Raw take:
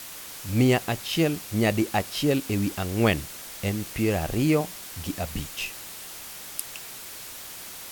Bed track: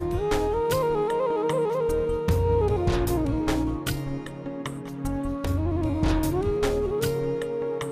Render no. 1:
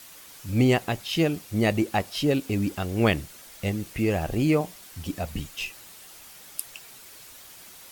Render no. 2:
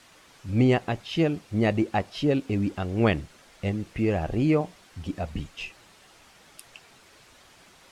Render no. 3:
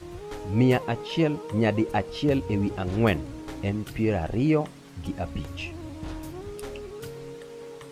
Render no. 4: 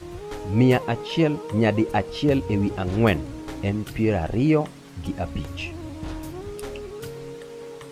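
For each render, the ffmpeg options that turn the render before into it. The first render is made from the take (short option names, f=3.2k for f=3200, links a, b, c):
-af "afftdn=nr=8:nf=-40"
-af "lowpass=8.6k,highshelf=f=3.8k:g=-11"
-filter_complex "[1:a]volume=-13dB[a];[0:a][a]amix=inputs=2:normalize=0"
-af "volume=3dB"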